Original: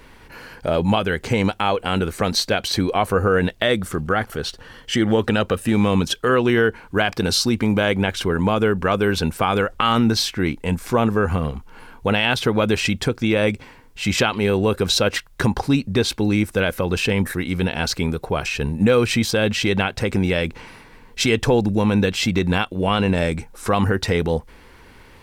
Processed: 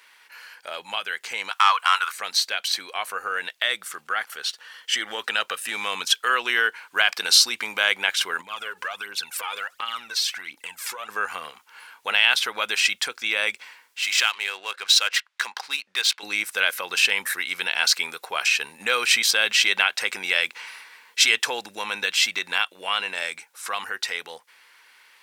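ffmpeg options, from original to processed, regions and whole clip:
ffmpeg -i in.wav -filter_complex "[0:a]asettb=1/sr,asplit=3[link_01][link_02][link_03];[link_01]atrim=end=1.514[link_04];[link_02]atrim=start=1.51:end=2.12,asetpts=PTS-STARTPTS,afade=type=in:duration=0.004:curve=qsin,afade=type=out:start_time=0.606:duration=0.004:curve=qsin,highpass=frequency=1100:width_type=q:width=4.5,acontrast=48[link_05];[link_03]atrim=start=2.116[link_06];[link_04][link_05]acrossfade=duration=0.004:curve1=hsin:curve2=qsin[link_07];[link_07][link_06]acrossfade=duration=0.004:curve1=qsin:curve2=hsin,asettb=1/sr,asplit=3[link_08][link_09][link_10];[link_08]atrim=end=8.414[link_11];[link_09]atrim=start=8.41:end=11.09,asetpts=PTS-STARTPTS,afade=type=in:duration=0.004:curve=qsin,afade=type=out:start_time=2.676:duration=0.004:curve=qsin,aphaser=in_gain=1:out_gain=1:delay=2.4:decay=0.66:speed=1.4:type=triangular,acompressor=threshold=-23dB:ratio=8:attack=3.2:release=140:knee=1:detection=peak[link_12];[link_10]atrim=start=11.086[link_13];[link_11][link_12]acrossfade=duration=0.004:curve1=hsin:curve2=qsin[link_14];[link_14][link_13]acrossfade=duration=0.004:curve1=qsin:curve2=hsin,asettb=1/sr,asplit=3[link_15][link_16][link_17];[link_15]atrim=end=14.014[link_18];[link_16]atrim=start=14.01:end=16.23,asetpts=PTS-STARTPTS,afade=type=in:duration=0.004:curve=qsin,afade=type=out:start_time=2.216:duration=0.004:curve=qsin,highpass=frequency=1100:poles=1,adynamicsmooth=sensitivity=8:basefreq=3000[link_19];[link_17]atrim=start=16.226[link_20];[link_18][link_19]acrossfade=duration=0.004:curve1=hsin:curve2=qsin[link_21];[link_21][link_20]acrossfade=duration=0.004:curve1=qsin:curve2=hsin,highpass=1500,dynaudnorm=framelen=380:gausssize=17:maxgain=11.5dB,volume=-1dB" out.wav

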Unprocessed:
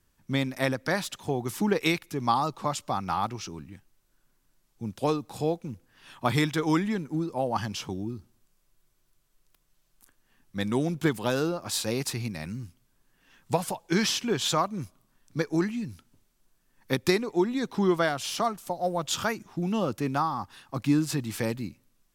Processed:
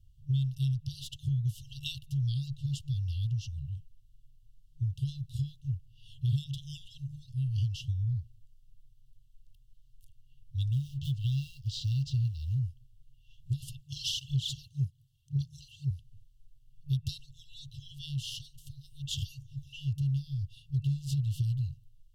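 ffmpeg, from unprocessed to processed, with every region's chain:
ffmpeg -i in.wav -filter_complex "[0:a]asettb=1/sr,asplit=3[link_01][link_02][link_03];[link_01]atrim=end=10.724[link_04];[link_02]atrim=start=10.72:end=12.59,asetpts=PTS-STARTPTS,afade=type=in:duration=0.004:curve=qsin,afade=type=out:start_time=1.866:duration=0.004:curve=qsin,lowpass=frequency=6000:width=0.5412,lowpass=frequency=6000:width=1.3066,acrusher=bits=5:mode=log:mix=0:aa=0.000001[link_05];[link_03]atrim=start=12.586[link_06];[link_04][link_05]acrossfade=duration=0.004:curve1=hsin:curve2=qsin[link_07];[link_07][link_06]acrossfade=duration=0.004:curve1=qsin:curve2=hsin,asettb=1/sr,asplit=3[link_08][link_09][link_10];[link_08]atrim=end=13.814[link_11];[link_09]atrim=start=13.81:end=15.91,asetpts=PTS-STARTPTS,afade=type=in:duration=0.004:curve=qsin,afade=type=out:start_time=2.096:duration=0.004:curve=qsin,highpass=110,aphaser=in_gain=1:out_gain=1:delay=2.4:decay=0.6:speed=1.9:type=triangular[link_12];[link_10]atrim=start=15.906[link_13];[link_11][link_12]acrossfade=duration=0.004:curve1=hsin:curve2=qsin[link_14];[link_14][link_13]acrossfade=duration=0.004:curve1=qsin:curve2=hsin,afftfilt=real='re*(1-between(b*sr/4096,150,2700))':imag='im*(1-between(b*sr/4096,150,2700))':win_size=4096:overlap=0.75,bass=frequency=250:gain=13,treble=frequency=4000:gain=-12,acompressor=threshold=-28dB:ratio=3" out.wav

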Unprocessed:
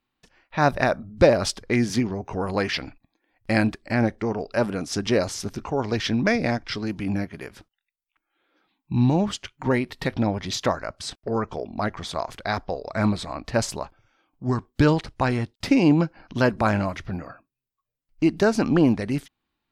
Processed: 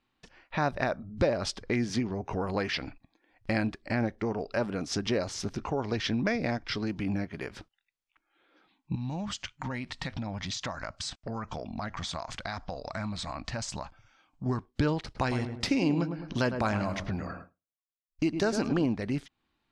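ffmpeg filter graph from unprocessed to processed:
ffmpeg -i in.wav -filter_complex "[0:a]asettb=1/sr,asplit=3[link_01][link_02][link_03];[link_01]atrim=end=8.954[link_04];[link_02]atrim=start=8.95:end=14.46,asetpts=PTS-STARTPTS,afade=type=in:duration=0.004:curve=qsin,afade=type=out:start_time=5.506:duration=0.004:curve=qsin,lowpass=frequency=7800:width_type=q:width=1.9,equalizer=frequency=400:width_type=o:width=0.7:gain=-13.5,acompressor=threshold=-33dB:ratio=3:attack=3.2:release=140:knee=1:detection=peak[link_05];[link_03]atrim=start=14.456[link_06];[link_04][link_05]acrossfade=duration=0.004:curve1=hsin:curve2=qsin[link_07];[link_07][link_06]acrossfade=duration=0.004:curve1=qsin:curve2=hsin,asettb=1/sr,asplit=3[link_08][link_09][link_10];[link_08]atrim=end=15.044[link_11];[link_09]atrim=start=15.04:end=18.86,asetpts=PTS-STARTPTS,afade=type=in:duration=0.004:curve=qsin,afade=type=out:start_time=3.816:duration=0.004:curve=qsin,highshelf=frequency=4200:gain=10.5,asplit=2[link_12][link_13];[link_13]adelay=105,lowpass=frequency=1300:poles=1,volume=-8.5dB,asplit=2[link_14][link_15];[link_15]adelay=105,lowpass=frequency=1300:poles=1,volume=0.35,asplit=2[link_16][link_17];[link_17]adelay=105,lowpass=frequency=1300:poles=1,volume=0.35,asplit=2[link_18][link_19];[link_19]adelay=105,lowpass=frequency=1300:poles=1,volume=0.35[link_20];[link_12][link_14][link_16][link_18][link_20]amix=inputs=5:normalize=0,atrim=end_sample=168462,agate=range=-33dB:threshold=-46dB:ratio=3:release=100:detection=peak[link_21];[link_10]atrim=start=18.856[link_22];[link_11][link_21]acrossfade=duration=0.004:curve1=hsin:curve2=qsin[link_23];[link_23][link_22]acrossfade=duration=0.004:curve1=qsin:curve2=hsin,lowpass=6700,acompressor=threshold=-36dB:ratio=2,volume=2.5dB" out.wav

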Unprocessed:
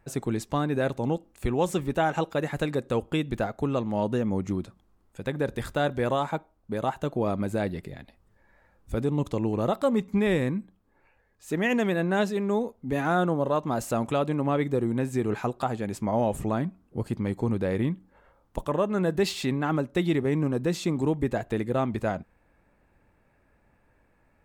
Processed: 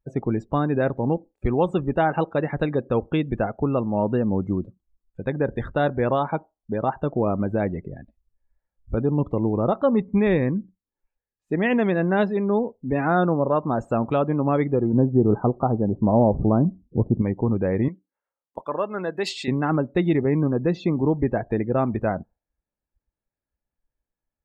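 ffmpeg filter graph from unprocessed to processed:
ffmpeg -i in.wav -filter_complex "[0:a]asettb=1/sr,asplit=3[link_01][link_02][link_03];[link_01]atrim=end=14.934[link_04];[link_02]atrim=start=14.93:end=17.22,asetpts=PTS-STARTPTS,afade=type=in:duration=0.004:curve=qsin,afade=type=out:start_time=2.286:duration=0.004:curve=qsin,lowpass=frequency=1400:width=0.5412,lowpass=frequency=1400:width=1.3066,tiltshelf=frequency=910:gain=5.5[link_05];[link_03]atrim=start=17.216[link_06];[link_04][link_05]acrossfade=duration=0.004:curve1=hsin:curve2=qsin[link_07];[link_07][link_06]acrossfade=duration=0.004:curve1=qsin:curve2=hsin,asettb=1/sr,asplit=3[link_08][link_09][link_10];[link_08]atrim=end=17.884[link_11];[link_09]atrim=start=17.88:end=19.48,asetpts=PTS-STARTPTS,afade=type=in:duration=0.004:curve=qsin,afade=type=out:start_time=1.596:duration=0.004:curve=qsin,highpass=frequency=750:poles=1,aemphasis=mode=production:type=50kf[link_12];[link_10]atrim=start=19.476[link_13];[link_11][link_12]acrossfade=duration=0.004:curve1=hsin:curve2=qsin[link_14];[link_14][link_13]acrossfade=duration=0.004:curve1=qsin:curve2=hsin,lowpass=frequency=2200:poles=1,afftdn=noise_reduction=31:noise_floor=-43,volume=4.5dB" out.wav

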